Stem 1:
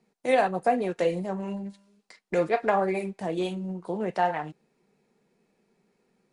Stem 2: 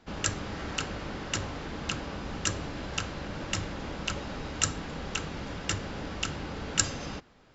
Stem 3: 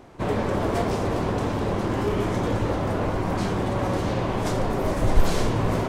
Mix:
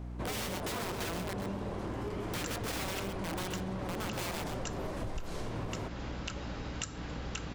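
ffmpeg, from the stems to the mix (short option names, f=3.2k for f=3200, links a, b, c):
-filter_complex "[0:a]aeval=exprs='(mod(15.8*val(0)+1,2)-1)/15.8':c=same,volume=-5.5dB,asplit=2[a][b];[b]volume=-6.5dB[c];[1:a]adelay=2200,volume=-3dB[d];[2:a]volume=-6.5dB[e];[d][e]amix=inputs=2:normalize=0,aeval=exprs='val(0)+0.01*(sin(2*PI*60*n/s)+sin(2*PI*2*60*n/s)/2+sin(2*PI*3*60*n/s)/3+sin(2*PI*4*60*n/s)/4+sin(2*PI*5*60*n/s)/5)':c=same,acompressor=threshold=-35dB:ratio=2,volume=0dB[f];[c]aecho=0:1:128:1[g];[a][f][g]amix=inputs=3:normalize=0,acompressor=threshold=-33dB:ratio=6"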